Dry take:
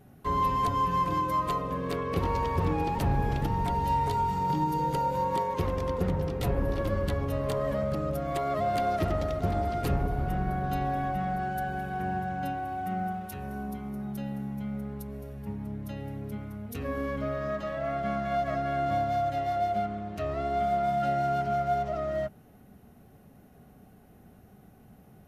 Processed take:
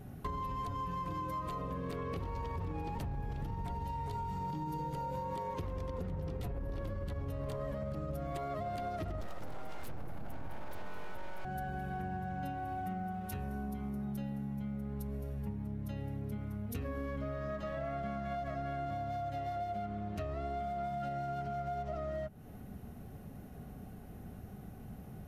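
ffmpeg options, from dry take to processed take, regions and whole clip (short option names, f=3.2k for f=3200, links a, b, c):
-filter_complex "[0:a]asettb=1/sr,asplit=3[a][b][c];[a]atrim=end=9.204[d];[b]atrim=start=9.2:end=11.45,asetpts=PTS-STARTPTS,afade=t=in:d=0.004:c=qsin,afade=t=out:st=2.246:d=0.004:c=qsin,highshelf=f=7k:g=10.5,aeval=exprs='abs(val(0))':c=same[e];[c]atrim=start=11.446[f];[d][e]acrossfade=d=0.004:c1=hsin:c2=qsin[g];[g][f]acrossfade=d=0.004:c1=qsin:c2=hsin,lowshelf=f=140:g=8.5,alimiter=limit=-20.5dB:level=0:latency=1:release=63,acompressor=threshold=-39dB:ratio=6,volume=2.5dB"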